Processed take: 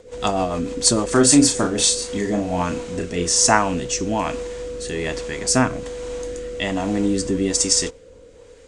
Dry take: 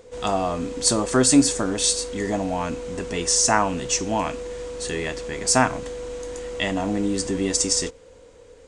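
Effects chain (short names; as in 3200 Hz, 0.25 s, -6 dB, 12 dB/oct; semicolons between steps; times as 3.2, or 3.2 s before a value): rotary speaker horn 6.7 Hz, later 1.2 Hz, at 1.4; 1.12–3.47 doubler 34 ms -5.5 dB; gain +4.5 dB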